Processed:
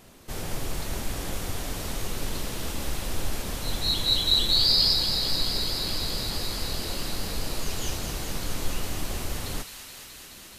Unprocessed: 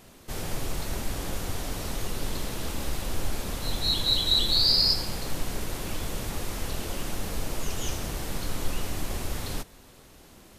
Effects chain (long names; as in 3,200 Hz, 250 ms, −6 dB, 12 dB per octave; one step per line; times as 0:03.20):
delay with a high-pass on its return 213 ms, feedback 85%, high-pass 1,600 Hz, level −8 dB